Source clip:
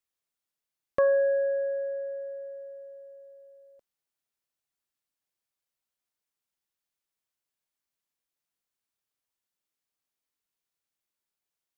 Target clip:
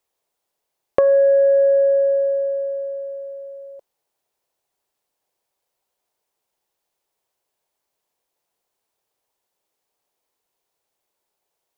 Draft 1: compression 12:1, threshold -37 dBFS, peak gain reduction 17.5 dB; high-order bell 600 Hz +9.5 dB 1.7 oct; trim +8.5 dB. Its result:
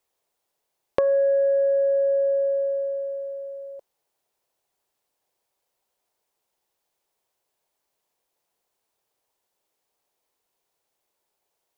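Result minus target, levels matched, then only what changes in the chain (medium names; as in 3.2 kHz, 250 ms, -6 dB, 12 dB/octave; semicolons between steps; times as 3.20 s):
compression: peak gain reduction +6 dB
change: compression 12:1, threshold -30.5 dBFS, peak gain reduction 11.5 dB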